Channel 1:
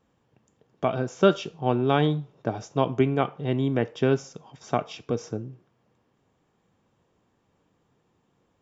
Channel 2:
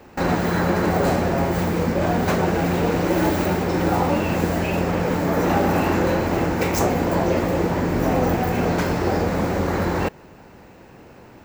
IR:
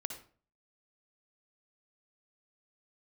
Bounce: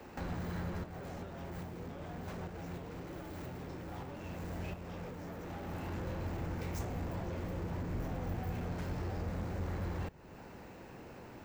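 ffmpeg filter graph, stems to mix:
-filter_complex "[0:a]acompressor=threshold=-29dB:ratio=6,volume=-14dB,asplit=2[link_01][link_02];[1:a]asoftclip=type=tanh:threshold=-21.5dB,volume=-5dB[link_03];[link_02]apad=whole_len=504629[link_04];[link_03][link_04]sidechaincompress=threshold=-52dB:ratio=5:attack=28:release=852[link_05];[link_01][link_05]amix=inputs=2:normalize=0,acrossover=split=130[link_06][link_07];[link_07]acompressor=threshold=-46dB:ratio=3[link_08];[link_06][link_08]amix=inputs=2:normalize=0"

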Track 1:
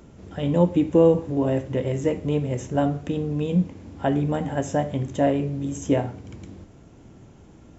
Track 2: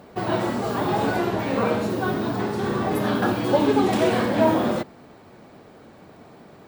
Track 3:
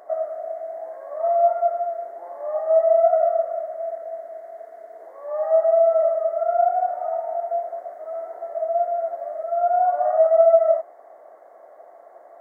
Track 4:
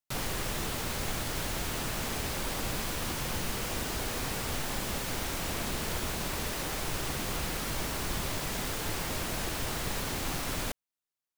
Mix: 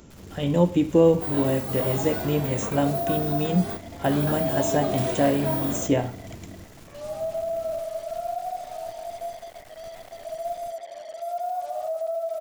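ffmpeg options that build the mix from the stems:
ffmpeg -i stem1.wav -i stem2.wav -i stem3.wav -i stem4.wav -filter_complex "[0:a]highshelf=frequency=3200:gain=9,volume=-1dB,asplit=2[link_01][link_02];[1:a]aemphasis=mode=production:type=50fm,adelay=1050,volume=-10.5dB[link_03];[2:a]equalizer=frequency=1700:width=1.2:gain=-8,acrusher=bits=5:mix=0:aa=0.5,alimiter=limit=-15dB:level=0:latency=1:release=80,adelay=1700,volume=-8dB[link_04];[3:a]aeval=exprs='max(val(0),0)':channel_layout=same,volume=-14dB[link_05];[link_02]apad=whole_len=340711[link_06];[link_03][link_06]sidechaingate=range=-33dB:threshold=-35dB:ratio=16:detection=peak[link_07];[link_01][link_07][link_04][link_05]amix=inputs=4:normalize=0" out.wav

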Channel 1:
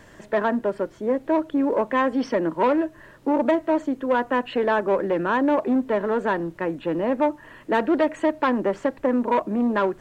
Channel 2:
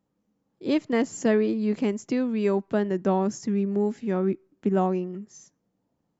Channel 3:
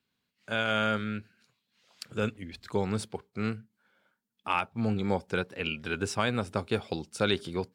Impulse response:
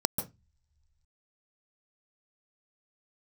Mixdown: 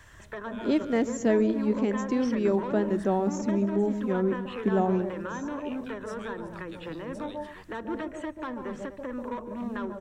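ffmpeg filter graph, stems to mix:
-filter_complex "[0:a]lowshelf=frequency=130:width_type=q:width=1.5:gain=13,volume=-2.5dB,asplit=3[link_01][link_02][link_03];[link_02]volume=-20.5dB[link_04];[link_03]volume=-23dB[link_05];[1:a]volume=-4.5dB,asplit=4[link_06][link_07][link_08][link_09];[link_07]volume=-17.5dB[link_10];[link_08]volume=-21.5dB[link_11];[2:a]volume=-10.5dB,asplit=2[link_12][link_13];[link_13]volume=-23.5dB[link_14];[link_09]apad=whole_len=341717[link_15];[link_12][link_15]sidechaincompress=threshold=-31dB:ratio=8:attack=16:release=525[link_16];[link_01][link_16]amix=inputs=2:normalize=0,highpass=frequency=690:width=0.5412,highpass=frequency=690:width=1.3066,acompressor=threshold=-37dB:ratio=6,volume=0dB[link_17];[3:a]atrim=start_sample=2205[link_18];[link_04][link_10][link_14]amix=inputs=3:normalize=0[link_19];[link_19][link_18]afir=irnorm=-1:irlink=0[link_20];[link_05][link_11]amix=inputs=2:normalize=0,aecho=0:1:245:1[link_21];[link_06][link_17][link_20][link_21]amix=inputs=4:normalize=0"

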